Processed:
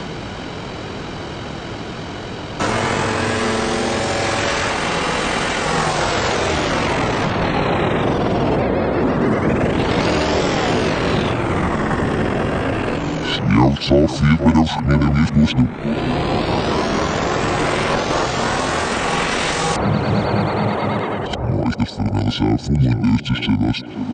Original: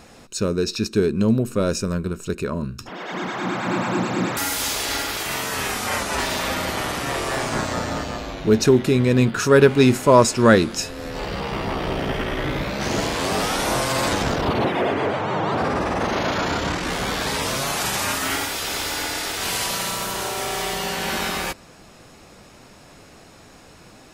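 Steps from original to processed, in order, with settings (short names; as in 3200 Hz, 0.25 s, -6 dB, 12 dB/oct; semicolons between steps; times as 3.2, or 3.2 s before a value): whole clip reversed; HPF 150 Hz 6 dB/oct; tone controls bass +1 dB, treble -3 dB; pitch shift -9.5 st; narrowing echo 0.481 s, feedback 67%, band-pass 490 Hz, level -11 dB; three-band squash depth 70%; gain +6 dB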